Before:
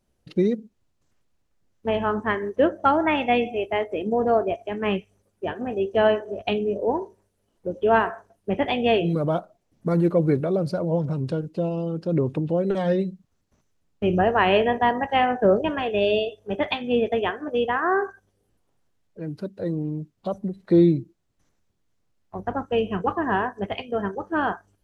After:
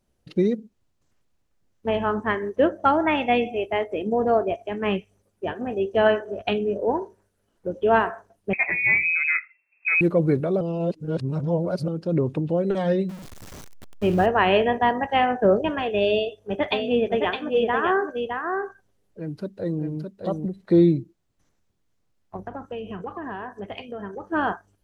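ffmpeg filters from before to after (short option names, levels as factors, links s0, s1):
-filter_complex "[0:a]asettb=1/sr,asplit=3[s0][s1][s2];[s0]atrim=end=6.064[s3];[s1]atrim=start=6.06:end=7.78,asetpts=PTS-STARTPTS,afade=t=in:d=0.004:c=qsin,afade=t=out:st=1.716:d=0.004:c=qsin,equalizer=f=1500:t=o:w=0.52:g=7[s4];[s2]atrim=start=7.776[s5];[s3][s4]acrossfade=d=0.004:c1=hsin:c2=qsin[s6];[s6][s5]acrossfade=d=0.004:c1=qsin:c2=hsin,asettb=1/sr,asplit=3[s7][s8][s9];[s7]atrim=end=8.534[s10];[s8]atrim=start=8.53:end=10.01,asetpts=PTS-STARTPTS,afade=t=in:d=0.004:c=qsin,afade=t=out:st=1.476:d=0.004:c=qsin,lowpass=f=2300:t=q:w=0.5098,lowpass=f=2300:t=q:w=0.6013,lowpass=f=2300:t=q:w=0.9,lowpass=f=2300:t=q:w=2.563,afreqshift=-2700[s11];[s9]atrim=start=10.006[s12];[s10][s11]acrossfade=d=0.004:c1=hsin:c2=qsin[s13];[s13][s12]acrossfade=d=0.004:c1=qsin:c2=hsin,asettb=1/sr,asplit=3[s14][s15][s16];[s14]atrim=end=13.094[s17];[s15]atrim=start=13.09:end=14.26,asetpts=PTS-STARTPTS,afade=t=in:d=0.004:c=qsin,afade=t=out:st=1.166:d=0.004:c=qsin,aeval=exprs='val(0)+0.5*0.0188*sgn(val(0))':c=same[s18];[s16]atrim=start=14.256[s19];[s17][s18]acrossfade=d=0.004:c1=hsin:c2=qsin[s20];[s20][s19]acrossfade=d=0.004:c1=qsin:c2=hsin,asettb=1/sr,asplit=3[s21][s22][s23];[s21]atrim=end=16.114[s24];[s22]atrim=start=16.11:end=20.46,asetpts=PTS-STARTPTS,afade=t=in:d=0.004:c=qsin,afade=t=out:st=4.346:d=0.004:c=qsin,aecho=1:1:613:0.562,atrim=end_sample=191835[s25];[s23]atrim=start=20.456[s26];[s24][s25]acrossfade=d=0.004:c1=hsin:c2=qsin[s27];[s27][s26]acrossfade=d=0.004:c1=qsin:c2=hsin,asettb=1/sr,asplit=3[s28][s29][s30];[s28]atrim=end=22.364[s31];[s29]atrim=start=22.36:end=24.32,asetpts=PTS-STARTPTS,afade=t=in:d=0.004:c=qsin,afade=t=out:st=1.956:d=0.004:c=qsin,acompressor=threshold=0.0316:ratio=6:attack=3.2:release=140:knee=1:detection=peak[s32];[s30]atrim=start=24.316[s33];[s31][s32]acrossfade=d=0.004:c1=hsin:c2=qsin[s34];[s34][s33]acrossfade=d=0.004:c1=qsin:c2=hsin,asplit=3[s35][s36][s37];[s35]atrim=end=10.612[s38];[s36]atrim=start=10.608:end=11.882,asetpts=PTS-STARTPTS,areverse[s39];[s37]atrim=start=11.878[s40];[s38][s39]acrossfade=d=0.004:c1=hsin:c2=hsin[s41];[s41][s40]acrossfade=d=0.004:c1=hsin:c2=hsin"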